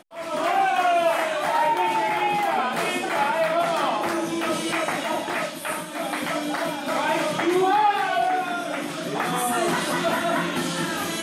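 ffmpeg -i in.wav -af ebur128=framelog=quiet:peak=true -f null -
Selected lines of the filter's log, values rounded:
Integrated loudness:
  I:         -23.5 LUFS
  Threshold: -33.5 LUFS
Loudness range:
  LRA:         3.5 LU
  Threshold: -43.6 LUFS
  LRA low:   -25.7 LUFS
  LRA high:  -22.2 LUFS
True peak:
  Peak:       -9.4 dBFS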